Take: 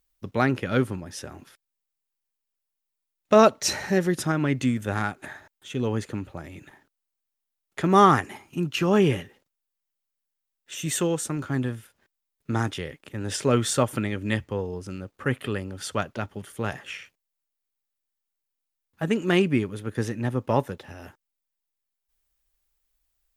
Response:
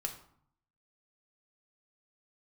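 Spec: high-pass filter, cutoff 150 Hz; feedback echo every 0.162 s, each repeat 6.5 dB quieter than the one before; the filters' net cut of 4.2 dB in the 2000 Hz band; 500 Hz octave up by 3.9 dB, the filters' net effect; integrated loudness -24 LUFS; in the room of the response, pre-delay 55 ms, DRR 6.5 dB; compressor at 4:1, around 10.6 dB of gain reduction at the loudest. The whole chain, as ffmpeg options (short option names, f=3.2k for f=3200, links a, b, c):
-filter_complex "[0:a]highpass=150,equalizer=f=500:t=o:g=5.5,equalizer=f=2k:t=o:g=-6,acompressor=threshold=-21dB:ratio=4,aecho=1:1:162|324|486|648|810|972:0.473|0.222|0.105|0.0491|0.0231|0.0109,asplit=2[a][b];[1:a]atrim=start_sample=2205,adelay=55[c];[b][c]afir=irnorm=-1:irlink=0,volume=-7dB[d];[a][d]amix=inputs=2:normalize=0,volume=3dB"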